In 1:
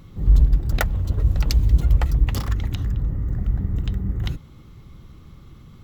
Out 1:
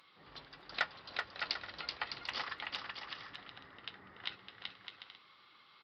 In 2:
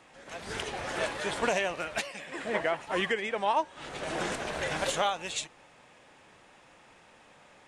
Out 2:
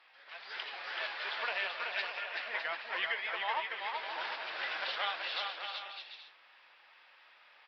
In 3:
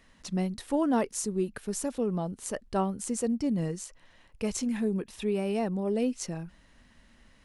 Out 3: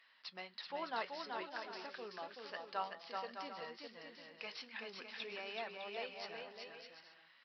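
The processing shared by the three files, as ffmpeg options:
-af "highpass=1.2k,aresample=11025,asoftclip=type=tanh:threshold=-18dB,aresample=44100,flanger=delay=5.9:depth=5:regen=-64:speed=0.33:shape=triangular,aecho=1:1:380|608|744.8|826.9|876.1:0.631|0.398|0.251|0.158|0.1,volume=2dB" -ar 44100 -c:a aac -b:a 48k

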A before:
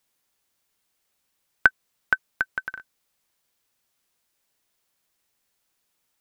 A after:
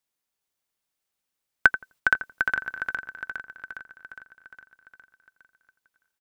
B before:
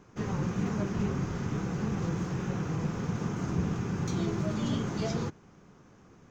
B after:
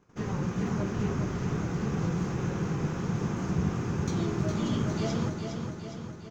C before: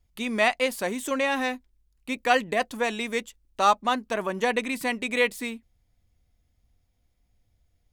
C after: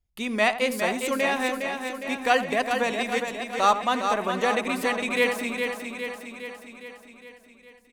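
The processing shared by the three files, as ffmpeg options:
-filter_complex "[0:a]asplit=2[a][b];[b]adelay=85,lowpass=f=1.4k:p=1,volume=-11dB,asplit=2[c][d];[d]adelay=85,lowpass=f=1.4k:p=1,volume=0.19,asplit=2[e][f];[f]adelay=85,lowpass=f=1.4k:p=1,volume=0.19[g];[c][e][g]amix=inputs=3:normalize=0[h];[a][h]amix=inputs=2:normalize=0,agate=range=-10dB:threshold=-55dB:ratio=16:detection=peak,asplit=2[i][j];[j]aecho=0:1:410|820|1230|1640|2050|2460|2870|3280:0.501|0.296|0.174|0.103|0.0607|0.0358|0.0211|0.0125[k];[i][k]amix=inputs=2:normalize=0"

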